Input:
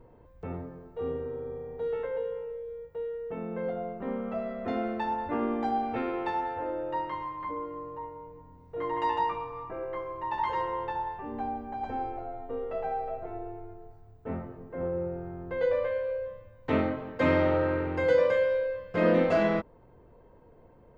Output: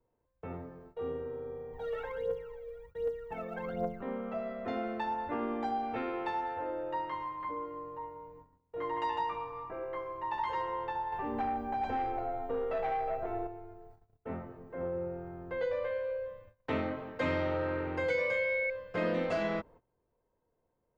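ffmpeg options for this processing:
ffmpeg -i in.wav -filter_complex "[0:a]asplit=3[link_01][link_02][link_03];[link_01]afade=type=out:start_time=1.72:duration=0.02[link_04];[link_02]aphaser=in_gain=1:out_gain=1:delay=1.8:decay=0.78:speed=1.3:type=triangular,afade=type=in:start_time=1.72:duration=0.02,afade=type=out:start_time=4:duration=0.02[link_05];[link_03]afade=type=in:start_time=4:duration=0.02[link_06];[link_04][link_05][link_06]amix=inputs=3:normalize=0,asettb=1/sr,asplit=3[link_07][link_08][link_09];[link_07]atrim=end=11.124[link_10];[link_08]atrim=start=11.12:end=13.47,asetpts=PTS-STARTPTS,afade=type=in:duration=0.004:curve=qsin,afade=type=out:start_time=2.346:duration=0.004:curve=qsin,aeval=exprs='0.075*sin(PI/2*1.41*val(0)/0.075)':channel_layout=same[link_11];[link_09]atrim=start=13.466[link_12];[link_10][link_11]acrossfade=duration=0.004:curve1=hsin:curve2=qsin[link_13];[link_13][link_12]acrossfade=duration=0.004:curve1=qsin:curve2=hsin,asettb=1/sr,asplit=3[link_14][link_15][link_16];[link_14]atrim=end=18.104[link_17];[link_15]atrim=start=18.1:end=18.7,asetpts=PTS-STARTPTS,afade=type=in:duration=0.004:curve=qsin,afade=type=out:start_time=0.596:duration=0.004:curve=qsin,aeval=exprs='val(0)+0.0447*sin(2*PI*2200*n/s)':channel_layout=same[link_18];[link_16]atrim=start=18.696[link_19];[link_17][link_18]acrossfade=duration=0.004:curve1=hsin:curve2=qsin[link_20];[link_20][link_19]acrossfade=duration=0.004:curve1=qsin:curve2=hsin,agate=range=-19dB:threshold=-49dB:ratio=16:detection=peak,lowshelf=frequency=400:gain=-5,acrossover=split=160|3000[link_21][link_22][link_23];[link_22]acompressor=threshold=-29dB:ratio=3[link_24];[link_21][link_24][link_23]amix=inputs=3:normalize=0,volume=-1.5dB" out.wav

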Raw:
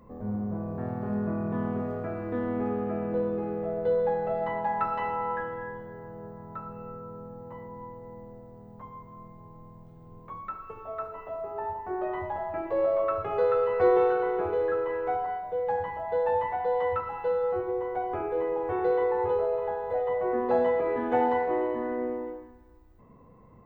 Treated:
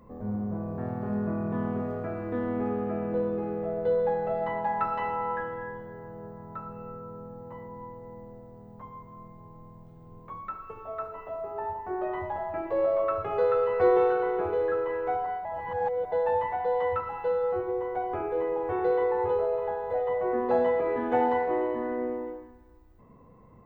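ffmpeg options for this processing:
ffmpeg -i in.wav -filter_complex "[0:a]asplit=3[link_01][link_02][link_03];[link_01]atrim=end=15.452[link_04];[link_02]atrim=start=15.448:end=16.122,asetpts=PTS-STARTPTS,areverse[link_05];[link_03]atrim=start=16.118[link_06];[link_04][link_05]acrossfade=duration=0.004:curve1=hsin:curve2=hsin[link_07];[link_07][link_06]acrossfade=duration=0.004:curve1=hsin:curve2=hsin" out.wav

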